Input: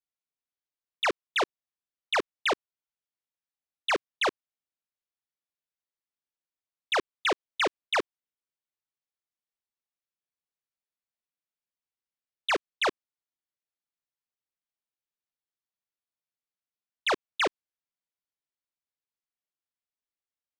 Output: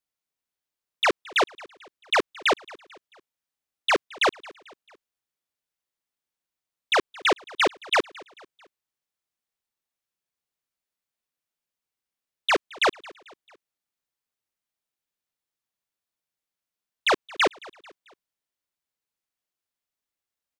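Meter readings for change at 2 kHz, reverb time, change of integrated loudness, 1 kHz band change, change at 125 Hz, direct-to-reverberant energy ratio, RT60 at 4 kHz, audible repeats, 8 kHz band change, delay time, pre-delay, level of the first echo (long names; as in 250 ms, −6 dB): +5.0 dB, no reverb audible, +5.0 dB, +5.0 dB, +5.0 dB, no reverb audible, no reverb audible, 3, +5.0 dB, 221 ms, no reverb audible, −22.5 dB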